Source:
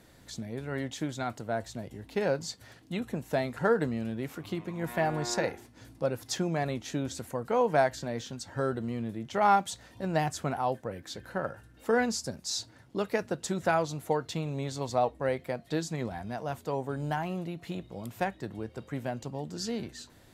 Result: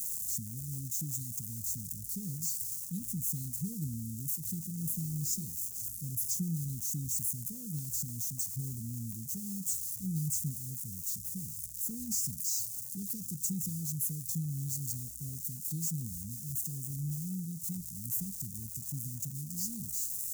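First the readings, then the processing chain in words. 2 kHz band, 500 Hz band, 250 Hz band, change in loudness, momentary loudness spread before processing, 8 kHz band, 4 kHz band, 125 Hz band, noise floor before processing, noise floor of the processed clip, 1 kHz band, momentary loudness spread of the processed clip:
below −40 dB, below −35 dB, −6.0 dB, −2.5 dB, 12 LU, +8.0 dB, −9.0 dB, −0.5 dB, −57 dBFS, −43 dBFS, below −40 dB, 6 LU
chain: spike at every zero crossing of −26.5 dBFS
elliptic band-stop filter 180–6,700 Hz, stop band 60 dB

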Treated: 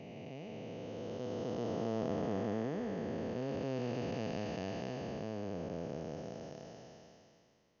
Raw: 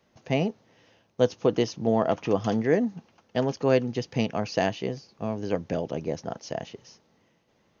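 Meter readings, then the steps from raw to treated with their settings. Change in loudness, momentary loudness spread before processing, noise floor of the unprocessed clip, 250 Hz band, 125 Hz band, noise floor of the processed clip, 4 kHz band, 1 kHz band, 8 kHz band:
−12.5 dB, 11 LU, −67 dBFS, −11.0 dB, −10.5 dB, −68 dBFS, −13.5 dB, −12.5 dB, can't be measured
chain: spectrum smeared in time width 997 ms
level −6.5 dB

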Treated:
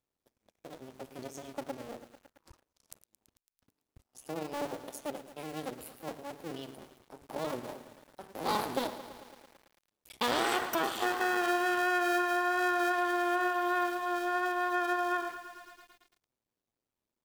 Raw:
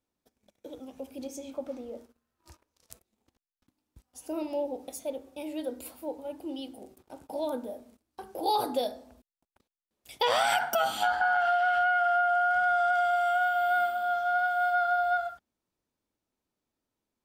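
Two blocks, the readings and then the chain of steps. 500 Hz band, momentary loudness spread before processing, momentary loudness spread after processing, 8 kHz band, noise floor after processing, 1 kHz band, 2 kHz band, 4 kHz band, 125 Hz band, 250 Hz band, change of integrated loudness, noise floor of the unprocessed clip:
−4.0 dB, 18 LU, 19 LU, −0.5 dB, below −85 dBFS, −5.5 dB, −4.0 dB, −2.5 dB, can't be measured, +3.0 dB, −4.0 dB, below −85 dBFS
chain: sub-harmonics by changed cycles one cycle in 2, muted
feedback echo at a low word length 111 ms, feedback 80%, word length 8 bits, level −14 dB
level −1.5 dB

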